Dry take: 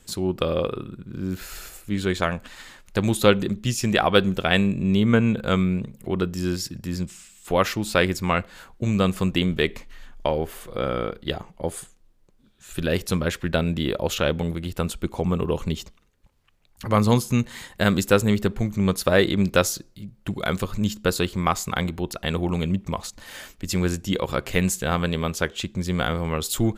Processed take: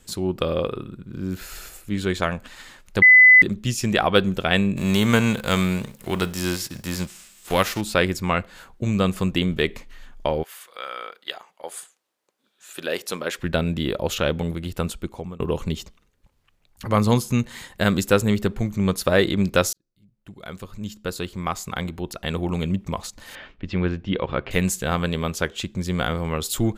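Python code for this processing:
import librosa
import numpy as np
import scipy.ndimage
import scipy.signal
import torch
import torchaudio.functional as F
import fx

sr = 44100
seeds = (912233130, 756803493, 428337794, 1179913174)

y = fx.envelope_flatten(x, sr, power=0.6, at=(4.76, 7.8), fade=0.02)
y = fx.highpass(y, sr, hz=fx.line((10.42, 1400.0), (13.37, 340.0)), slope=12, at=(10.42, 13.37), fade=0.02)
y = fx.lowpass(y, sr, hz=3300.0, slope=24, at=(23.35, 24.51))
y = fx.edit(y, sr, fx.bleep(start_s=3.02, length_s=0.4, hz=2010.0, db=-7.0),
    fx.fade_out_to(start_s=14.86, length_s=0.54, floor_db=-21.0),
    fx.fade_in_span(start_s=19.73, length_s=2.99), tone=tone)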